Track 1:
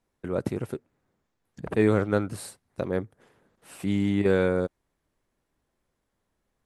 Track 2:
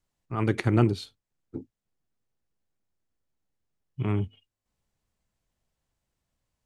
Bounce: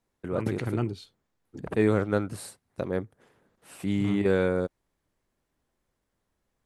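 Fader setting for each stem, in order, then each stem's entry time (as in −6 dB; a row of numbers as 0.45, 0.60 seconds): −1.5, −7.5 decibels; 0.00, 0.00 seconds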